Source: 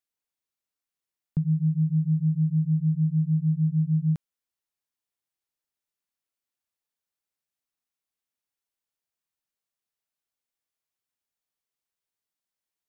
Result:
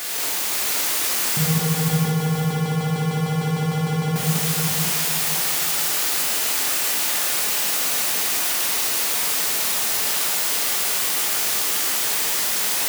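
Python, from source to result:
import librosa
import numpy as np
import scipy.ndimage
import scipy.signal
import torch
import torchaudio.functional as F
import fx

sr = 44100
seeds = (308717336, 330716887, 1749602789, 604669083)

p1 = x + 0.5 * 10.0 ** (-31.5 / 20.0) * np.sign(x)
p2 = fx.highpass(p1, sr, hz=310.0, slope=6)
p3 = fx.over_compress(p2, sr, threshold_db=-31.0, ratio=-1.0)
p4 = p3 + fx.echo_feedback(p3, sr, ms=515, feedback_pct=31, wet_db=-3.0, dry=0)
p5 = fx.rev_gated(p4, sr, seeds[0], gate_ms=260, shape='flat', drr_db=-6.5)
y = p5 * 10.0 ** (7.0 / 20.0)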